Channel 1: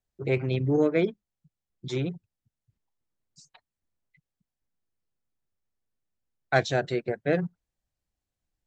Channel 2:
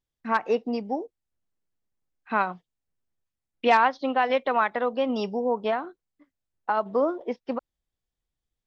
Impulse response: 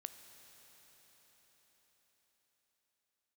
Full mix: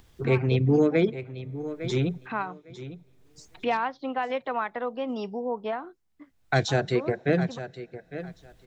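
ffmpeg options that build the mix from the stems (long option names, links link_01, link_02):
-filter_complex "[0:a]volume=2.5dB,asplit=4[link_01][link_02][link_03][link_04];[link_02]volume=-17dB[link_05];[link_03]volume=-13.5dB[link_06];[1:a]highshelf=frequency=4600:gain=-7,acompressor=mode=upward:threshold=-27dB:ratio=2.5,volume=-4.5dB[link_07];[link_04]apad=whole_len=382293[link_08];[link_07][link_08]sidechaincompress=threshold=-25dB:ratio=8:attack=34:release=1090[link_09];[2:a]atrim=start_sample=2205[link_10];[link_05][link_10]afir=irnorm=-1:irlink=0[link_11];[link_06]aecho=0:1:855|1710|2565:1|0.17|0.0289[link_12];[link_01][link_09][link_11][link_12]amix=inputs=4:normalize=0,equalizer=frequency=75:width_type=o:width=0.98:gain=5,bandreject=frequency=570:width=12,acrossover=split=380|3000[link_13][link_14][link_15];[link_14]acompressor=threshold=-23dB:ratio=6[link_16];[link_13][link_16][link_15]amix=inputs=3:normalize=0"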